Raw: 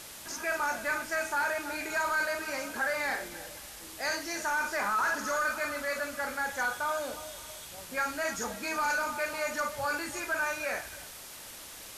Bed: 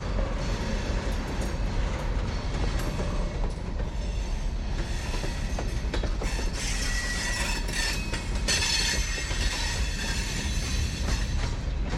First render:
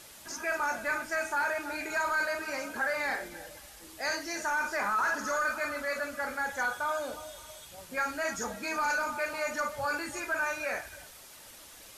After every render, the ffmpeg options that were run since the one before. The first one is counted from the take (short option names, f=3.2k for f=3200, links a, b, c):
-af "afftdn=nr=6:nf=-46"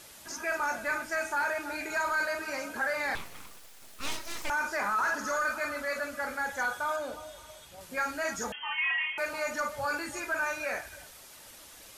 -filter_complex "[0:a]asettb=1/sr,asplit=3[a][b][c];[a]atrim=end=3.154[d];[b]atrim=start=3.15:end=4.5,asetpts=PTS-STARTPTS,afade=t=in:d=0.004:c=qsin,afade=t=out:st=1.346:d=0.004:c=qsin,aeval=exprs='abs(val(0))':c=same[e];[c]atrim=start=4.496[f];[d][e]acrossfade=d=0.004:c1=hsin:c2=qsin[g];[g][f]acrossfade=d=0.004:c1=qsin:c2=hsin,asettb=1/sr,asplit=3[h][i][j];[h]atrim=end=6.964[k];[i]atrim=start=6.96:end=7.81,asetpts=PTS-STARTPTS,afade=t=in:d=0.004:c=qsin,afade=t=out:st=0.846:d=0.004:c=qsin,highshelf=f=4.1k:g=-5.5[l];[j]atrim=start=7.806[m];[k][l]acrossfade=d=0.004:c1=hsin:c2=qsin[n];[n][m]acrossfade=d=0.004:c1=qsin:c2=hsin,asettb=1/sr,asplit=3[o][p][q];[o]atrim=end=8.524[r];[p]atrim=start=8.52:end=9.18,asetpts=PTS-STARTPTS,afade=t=in:d=0.004:c=qsin,afade=t=out:st=0.656:d=0.004:c=qsin,lowpass=f=2.9k:t=q:w=0.5098,lowpass=f=2.9k:t=q:w=0.6013,lowpass=f=2.9k:t=q:w=0.9,lowpass=f=2.9k:t=q:w=2.563,afreqshift=-3400[s];[q]atrim=start=9.176[t];[r][s]acrossfade=d=0.004:c1=hsin:c2=qsin[u];[u][t]acrossfade=d=0.004:c1=qsin:c2=hsin"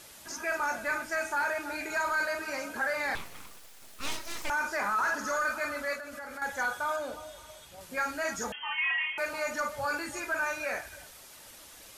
-filter_complex "[0:a]asettb=1/sr,asplit=3[a][b][c];[a]atrim=end=5.954[d];[b]atrim=start=5.95:end=6.42,asetpts=PTS-STARTPTS,afade=t=in:d=0.004:c=qsin,afade=t=out:st=0.466:d=0.004:c=qsin,acompressor=threshold=-38dB:ratio=6:attack=3.2:release=140:knee=1:detection=peak[e];[c]atrim=start=6.416[f];[d][e]acrossfade=d=0.004:c1=hsin:c2=qsin[g];[g][f]acrossfade=d=0.004:c1=qsin:c2=hsin"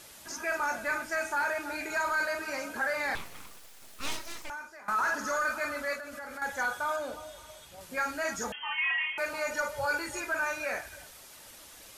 -filter_complex "[0:a]asettb=1/sr,asplit=3[a][b][c];[a]atrim=end=9.504[d];[b]atrim=start=9.5:end=10.21,asetpts=PTS-STARTPTS,afade=t=in:d=0.004:c=qsin,afade=t=out:st=0.706:d=0.004:c=qsin,aecho=1:1:2.1:0.53,atrim=end_sample=31311[e];[c]atrim=start=10.206[f];[d][e]acrossfade=d=0.004:c1=hsin:c2=qsin[g];[g][f]acrossfade=d=0.004:c1=qsin:c2=hsin,asplit=2[h][i];[h]atrim=end=4.88,asetpts=PTS-STARTPTS,afade=t=out:st=4.2:d=0.68:c=qua:silence=0.112202[j];[i]atrim=start=4.88,asetpts=PTS-STARTPTS,afade=t=in:d=0.004:c=hsin:silence=0.112202[k];[j][k]concat=n=2:v=0:a=1"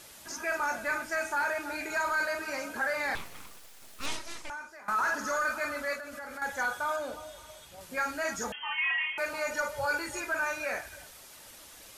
-filter_complex "[0:a]asettb=1/sr,asplit=3[a][b][c];[a]atrim=end=4.064[d];[b]atrim=start=4.06:end=4.69,asetpts=PTS-STARTPTS,afade=t=in:d=0.004:c=qsin,afade=t=out:st=0.626:d=0.004:c=qsin,lowpass=f=11k:w=0.5412,lowpass=f=11k:w=1.3066[e];[c]atrim=start=4.686[f];[d][e]acrossfade=d=0.004:c1=hsin:c2=qsin[g];[g][f]acrossfade=d=0.004:c1=qsin:c2=hsin"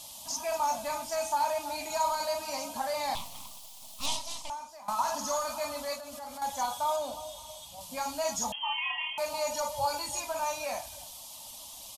-af "firequalizer=gain_entry='entry(270,0);entry(380,-18);entry(610,3);entry(980,7);entry(1500,-18);entry(3100,6)':delay=0.05:min_phase=1"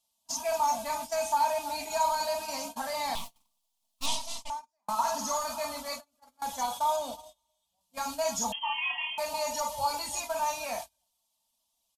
-af "agate=range=-33dB:threshold=-38dB:ratio=16:detection=peak,aecho=1:1:4.4:0.45"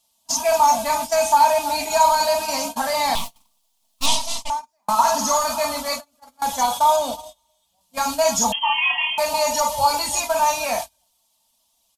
-af "volume=11.5dB"